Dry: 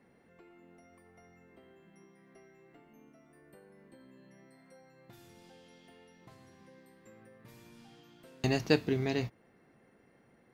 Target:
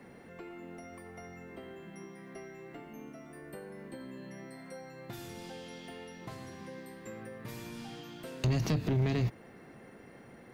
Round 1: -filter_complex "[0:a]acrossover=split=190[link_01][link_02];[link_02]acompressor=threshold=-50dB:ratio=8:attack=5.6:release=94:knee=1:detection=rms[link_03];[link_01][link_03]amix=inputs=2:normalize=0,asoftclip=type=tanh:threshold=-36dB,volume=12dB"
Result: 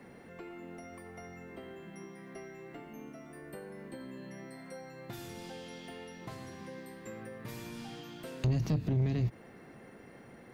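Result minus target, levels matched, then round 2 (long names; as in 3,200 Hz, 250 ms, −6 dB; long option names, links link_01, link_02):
downward compressor: peak gain reduction +8 dB
-filter_complex "[0:a]acrossover=split=190[link_01][link_02];[link_02]acompressor=threshold=-41dB:ratio=8:attack=5.6:release=94:knee=1:detection=rms[link_03];[link_01][link_03]amix=inputs=2:normalize=0,asoftclip=type=tanh:threshold=-36dB,volume=12dB"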